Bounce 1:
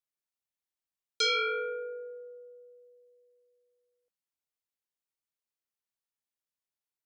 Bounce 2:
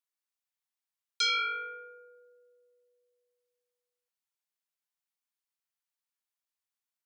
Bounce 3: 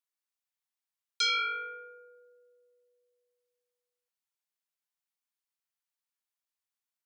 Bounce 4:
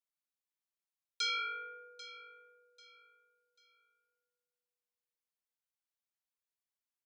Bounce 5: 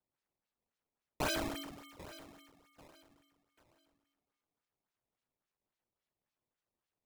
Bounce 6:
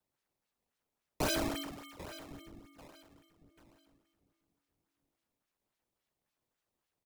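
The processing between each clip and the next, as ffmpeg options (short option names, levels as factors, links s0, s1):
-af "highpass=f=730:w=0.5412,highpass=f=730:w=1.3066"
-af anull
-af "aecho=1:1:791|1582|2373:0.158|0.0491|0.0152,volume=0.473"
-af "aeval=exprs='val(0)*sin(2*PI*1700*n/s)':c=same,acrusher=samples=17:mix=1:aa=0.000001:lfo=1:lforange=27.2:lforate=3.6,volume=1.41"
-filter_complex "[0:a]acrossover=split=410|620|4000[s0][s1][s2][s3];[s0]aecho=1:1:1106|2212:0.178|0.0391[s4];[s2]asoftclip=type=tanh:threshold=0.0112[s5];[s4][s1][s5][s3]amix=inputs=4:normalize=0,volume=1.58"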